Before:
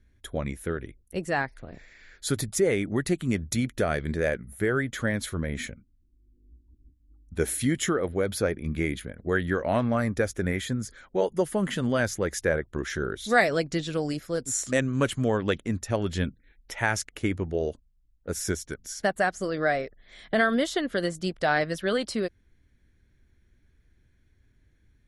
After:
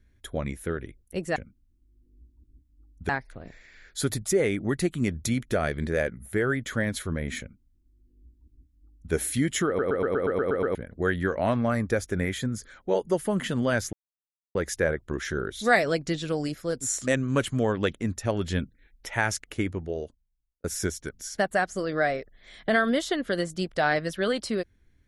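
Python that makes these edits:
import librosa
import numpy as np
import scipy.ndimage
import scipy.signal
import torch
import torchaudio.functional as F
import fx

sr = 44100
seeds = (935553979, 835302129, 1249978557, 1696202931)

y = fx.edit(x, sr, fx.duplicate(start_s=5.67, length_s=1.73, to_s=1.36),
    fx.stutter_over(start_s=7.94, slice_s=0.12, count=9),
    fx.insert_silence(at_s=12.2, length_s=0.62),
    fx.fade_out_span(start_s=17.15, length_s=1.14), tone=tone)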